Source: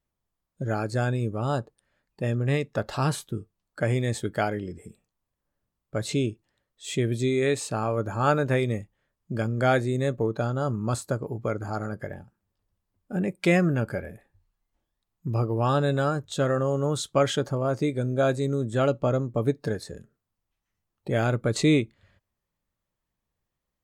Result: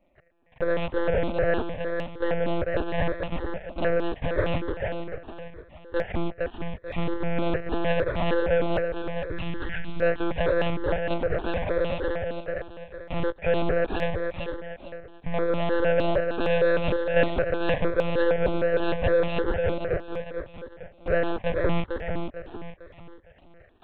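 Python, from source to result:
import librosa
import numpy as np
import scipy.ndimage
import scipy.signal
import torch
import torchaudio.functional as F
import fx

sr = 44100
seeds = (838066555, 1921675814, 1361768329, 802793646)

p1 = fx.delta_mod(x, sr, bps=32000, step_db=-39.5)
p2 = fx.formant_cascade(p1, sr, vowel='e')
p3 = fx.fuzz(p2, sr, gain_db=49.0, gate_db=-52.0)
p4 = p2 + (p3 * librosa.db_to_amplitude(-6.0))
p5 = fx.spec_erase(p4, sr, start_s=8.78, length_s=1.23, low_hz=340.0, high_hz=1300.0)
p6 = p5 + fx.echo_feedback(p5, sr, ms=450, feedback_pct=38, wet_db=-5.0, dry=0)
p7 = fx.lpc_monotone(p6, sr, seeds[0], pitch_hz=170.0, order=8)
p8 = fx.phaser_held(p7, sr, hz=6.5, low_hz=460.0, high_hz=1600.0)
y = p8 * librosa.db_to_amplitude(-1.0)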